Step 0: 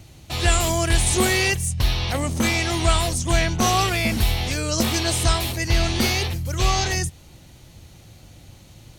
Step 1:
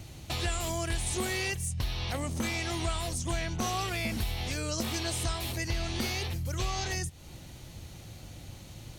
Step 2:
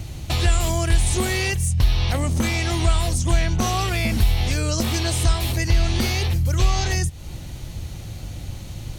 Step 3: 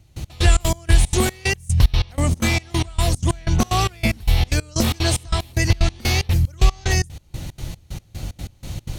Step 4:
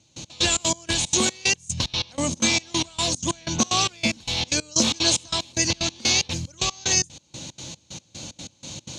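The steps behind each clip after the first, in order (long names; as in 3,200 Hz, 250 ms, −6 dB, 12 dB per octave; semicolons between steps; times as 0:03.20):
downward compressor 3 to 1, threshold −33 dBFS, peak gain reduction 14.5 dB
low-shelf EQ 100 Hz +10.5 dB; level +8 dB
gate pattern "..x..xx.x..xx.xx" 186 BPM −24 dB; level +4 dB
loudspeaker in its box 260–7,400 Hz, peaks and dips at 400 Hz −9 dB, 720 Hz −8 dB, 1,300 Hz −8 dB, 1,900 Hz −10 dB, 3,900 Hz +4 dB, 6,600 Hz +9 dB; level +2.5 dB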